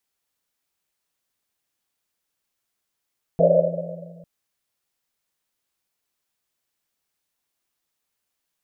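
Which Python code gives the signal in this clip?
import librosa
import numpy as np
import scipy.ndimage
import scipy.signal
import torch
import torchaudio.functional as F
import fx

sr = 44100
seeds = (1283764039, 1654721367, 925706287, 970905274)

y = fx.risset_drum(sr, seeds[0], length_s=0.85, hz=170.0, decay_s=2.45, noise_hz=570.0, noise_width_hz=160.0, noise_pct=75)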